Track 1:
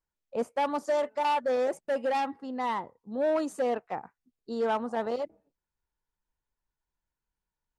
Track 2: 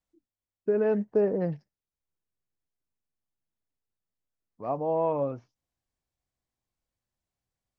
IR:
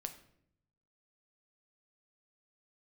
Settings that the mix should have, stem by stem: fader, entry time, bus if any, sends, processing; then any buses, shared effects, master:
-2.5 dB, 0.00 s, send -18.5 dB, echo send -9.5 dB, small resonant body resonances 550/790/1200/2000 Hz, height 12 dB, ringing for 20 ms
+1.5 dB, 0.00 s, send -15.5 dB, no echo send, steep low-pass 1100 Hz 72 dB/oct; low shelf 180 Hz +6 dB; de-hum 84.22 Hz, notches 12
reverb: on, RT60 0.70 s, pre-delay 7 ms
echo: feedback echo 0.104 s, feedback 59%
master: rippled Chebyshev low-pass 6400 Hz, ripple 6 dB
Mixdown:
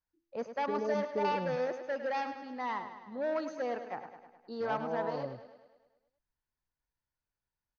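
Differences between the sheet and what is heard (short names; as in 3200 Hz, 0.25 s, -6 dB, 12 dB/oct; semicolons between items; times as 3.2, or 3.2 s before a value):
stem 1: missing small resonant body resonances 550/790/1200/2000 Hz, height 12 dB, ringing for 20 ms; stem 2 +1.5 dB -> -6.5 dB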